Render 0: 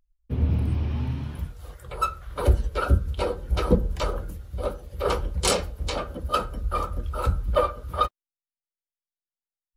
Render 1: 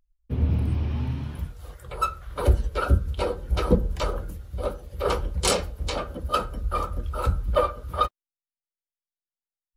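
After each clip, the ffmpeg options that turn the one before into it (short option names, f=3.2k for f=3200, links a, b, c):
-af anull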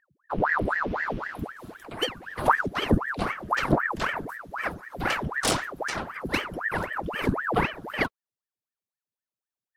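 -af "aeval=exprs='0.501*(cos(1*acos(clip(val(0)/0.501,-1,1)))-cos(1*PI/2))+0.0501*(cos(4*acos(clip(val(0)/0.501,-1,1)))-cos(4*PI/2))':c=same,aeval=exprs='val(0)*sin(2*PI*970*n/s+970*0.9/3.9*sin(2*PI*3.9*n/s))':c=same"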